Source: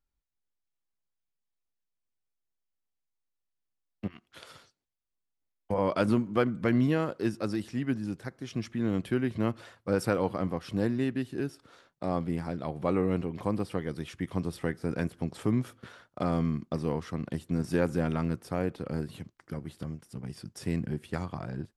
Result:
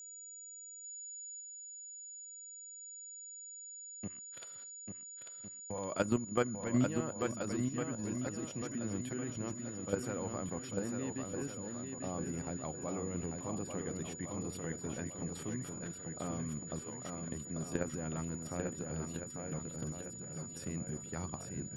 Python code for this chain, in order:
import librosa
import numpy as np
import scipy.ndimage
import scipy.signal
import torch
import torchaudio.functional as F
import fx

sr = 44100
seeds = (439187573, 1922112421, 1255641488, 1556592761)

y = fx.highpass(x, sr, hz=880.0, slope=6, at=(16.81, 17.22))
y = fx.level_steps(y, sr, step_db=12)
y = y + 10.0 ** (-44.0 / 20.0) * np.sin(2.0 * np.pi * 6900.0 * np.arange(len(y)) / sr)
y = fx.echo_swing(y, sr, ms=1406, ratio=1.5, feedback_pct=34, wet_db=-5.0)
y = y * librosa.db_to_amplitude(-3.5)